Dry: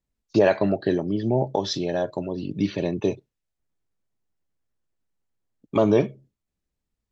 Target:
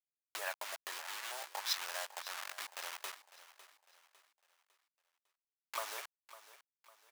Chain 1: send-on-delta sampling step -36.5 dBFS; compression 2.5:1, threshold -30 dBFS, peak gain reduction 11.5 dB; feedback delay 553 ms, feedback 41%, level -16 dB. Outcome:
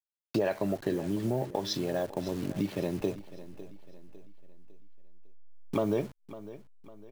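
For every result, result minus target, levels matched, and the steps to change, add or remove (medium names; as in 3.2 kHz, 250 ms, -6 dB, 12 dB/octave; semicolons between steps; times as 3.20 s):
send-on-delta sampling: distortion -12 dB; 1 kHz band -5.5 dB
change: send-on-delta sampling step -24.5 dBFS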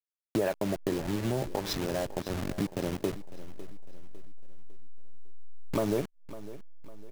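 1 kHz band -4.5 dB
add after compression: high-pass 960 Hz 24 dB/octave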